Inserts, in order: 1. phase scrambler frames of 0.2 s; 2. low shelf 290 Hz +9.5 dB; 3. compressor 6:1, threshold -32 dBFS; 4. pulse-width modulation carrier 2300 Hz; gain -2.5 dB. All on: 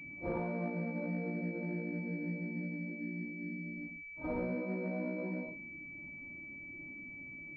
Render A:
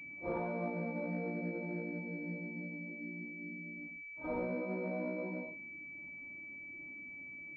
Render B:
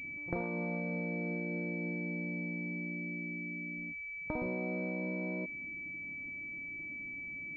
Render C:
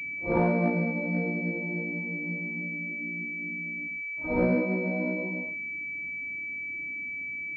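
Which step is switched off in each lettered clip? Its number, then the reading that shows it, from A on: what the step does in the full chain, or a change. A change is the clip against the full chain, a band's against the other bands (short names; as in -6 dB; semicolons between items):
2, 125 Hz band -4.5 dB; 1, 2 kHz band +5.5 dB; 3, mean gain reduction 3.5 dB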